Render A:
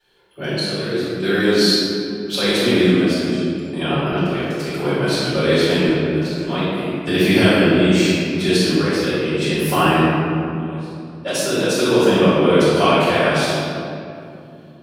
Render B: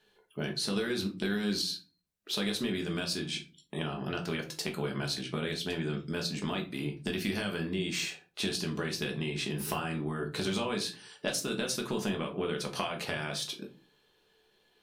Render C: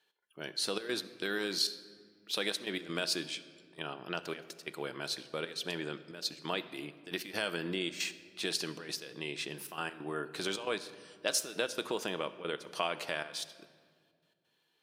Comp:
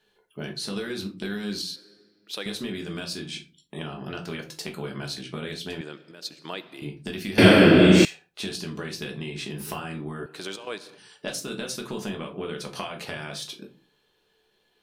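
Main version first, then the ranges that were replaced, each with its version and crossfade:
B
0:01.76–0:02.46: punch in from C
0:05.81–0:06.82: punch in from C
0:07.38–0:08.05: punch in from A
0:10.26–0:10.98: punch in from C

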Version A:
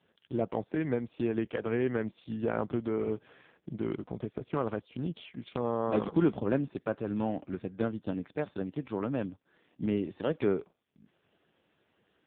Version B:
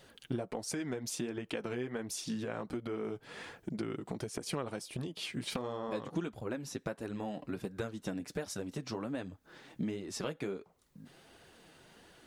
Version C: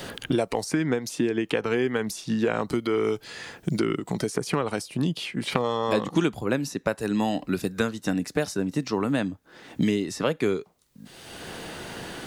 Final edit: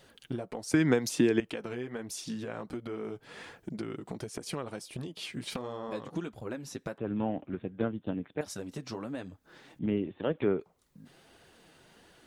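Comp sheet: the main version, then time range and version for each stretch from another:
B
0:00.74–0:01.40: punch in from C
0:06.98–0:08.41: punch in from A
0:09.79–0:10.60: punch in from A

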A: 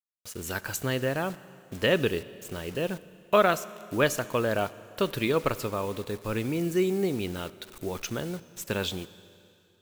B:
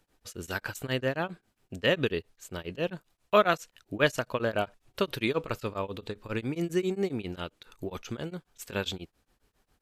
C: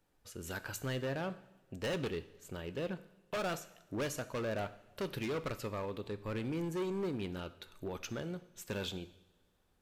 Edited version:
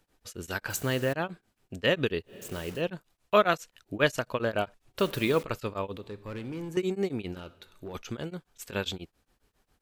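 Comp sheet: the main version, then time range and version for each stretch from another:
B
0:00.70–0:01.13: punch in from A
0:02.31–0:02.78: punch in from A, crossfade 0.10 s
0:04.99–0:05.43: punch in from A
0:05.97–0:06.77: punch in from C
0:07.36–0:07.94: punch in from C

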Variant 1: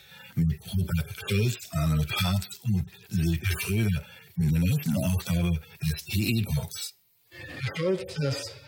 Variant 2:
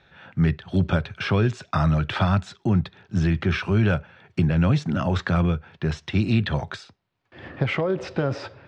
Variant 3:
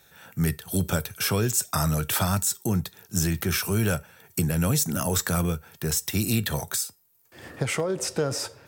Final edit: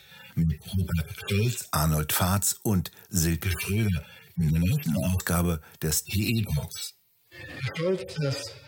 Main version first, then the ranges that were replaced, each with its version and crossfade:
1
0:01.62–0:03.44: punch in from 3, crossfade 0.16 s
0:05.20–0:06.05: punch in from 3
not used: 2

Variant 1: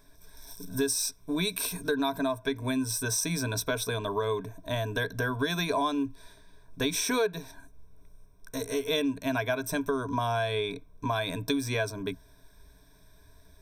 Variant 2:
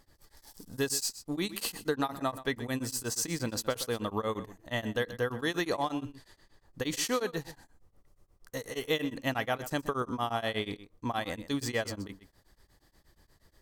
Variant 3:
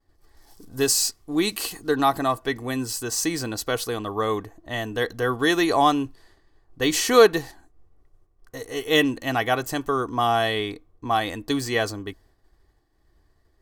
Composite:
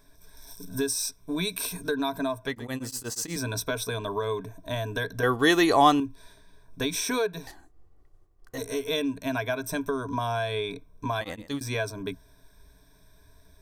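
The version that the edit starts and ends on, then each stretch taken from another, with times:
1
0:02.47–0:03.36: punch in from 2
0:05.23–0:06.00: punch in from 3
0:07.47–0:08.58: punch in from 3
0:11.21–0:11.61: punch in from 2

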